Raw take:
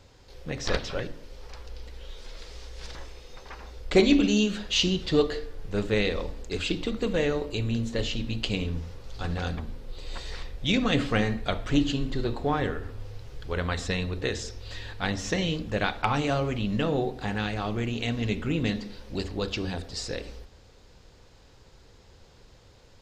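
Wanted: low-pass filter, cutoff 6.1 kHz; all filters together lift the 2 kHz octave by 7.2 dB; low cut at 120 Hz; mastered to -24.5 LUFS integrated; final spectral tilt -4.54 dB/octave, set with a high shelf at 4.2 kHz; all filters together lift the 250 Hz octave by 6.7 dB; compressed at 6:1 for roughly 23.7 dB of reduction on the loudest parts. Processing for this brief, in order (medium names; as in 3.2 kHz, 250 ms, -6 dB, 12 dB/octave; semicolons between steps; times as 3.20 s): high-pass 120 Hz; low-pass 6.1 kHz; peaking EQ 250 Hz +8.5 dB; peaking EQ 2 kHz +7.5 dB; treble shelf 4.2 kHz +7 dB; compression 6:1, threshold -36 dBFS; trim +15 dB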